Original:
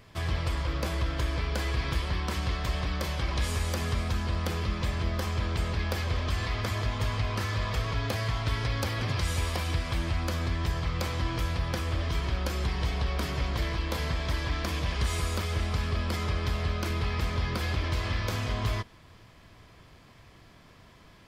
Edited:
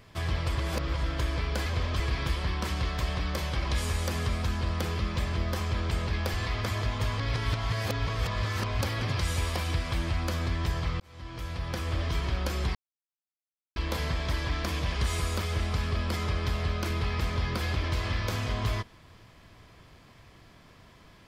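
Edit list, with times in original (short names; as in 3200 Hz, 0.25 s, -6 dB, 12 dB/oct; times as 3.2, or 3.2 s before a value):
0.58–1.03 reverse
6–6.34 move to 1.66
7.2–8.81 reverse
11–11.97 fade in linear
12.75–13.76 mute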